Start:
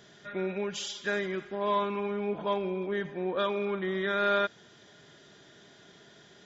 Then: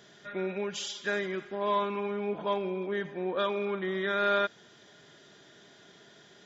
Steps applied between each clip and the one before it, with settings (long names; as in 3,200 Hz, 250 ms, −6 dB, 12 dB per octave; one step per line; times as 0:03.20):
low-shelf EQ 98 Hz −8.5 dB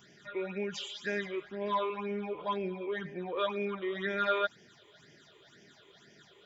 all-pass phaser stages 8, 2 Hz, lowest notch 200–1,200 Hz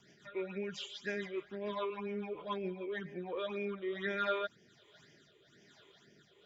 rotating-speaker cabinet horn 7 Hz, later 1.2 Hz, at 0:02.91
level −2 dB